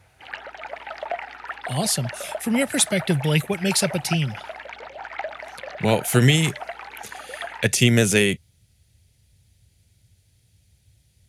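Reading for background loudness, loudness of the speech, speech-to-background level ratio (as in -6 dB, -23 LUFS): -35.0 LUFS, -21.0 LUFS, 14.0 dB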